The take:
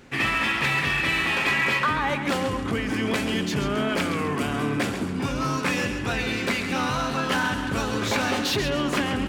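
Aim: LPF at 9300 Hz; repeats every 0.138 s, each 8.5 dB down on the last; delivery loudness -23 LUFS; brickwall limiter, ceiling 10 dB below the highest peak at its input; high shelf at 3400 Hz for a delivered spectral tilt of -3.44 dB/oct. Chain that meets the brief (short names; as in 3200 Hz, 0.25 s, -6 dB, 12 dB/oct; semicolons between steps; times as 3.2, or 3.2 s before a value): LPF 9300 Hz; high shelf 3400 Hz +8.5 dB; limiter -20.5 dBFS; feedback echo 0.138 s, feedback 38%, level -8.5 dB; gain +4 dB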